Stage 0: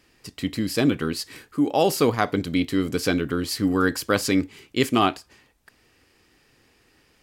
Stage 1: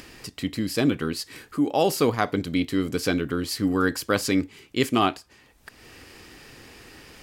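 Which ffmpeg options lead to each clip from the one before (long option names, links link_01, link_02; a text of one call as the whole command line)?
ffmpeg -i in.wav -af "acompressor=mode=upward:threshold=-31dB:ratio=2.5,volume=-1.5dB" out.wav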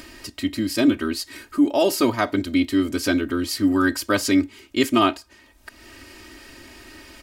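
ffmpeg -i in.wav -af "aecho=1:1:3.2:0.97" out.wav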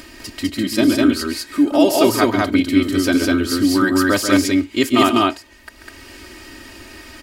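ffmpeg -i in.wav -af "aecho=1:1:137|201.2:0.355|0.891,volume=2.5dB" out.wav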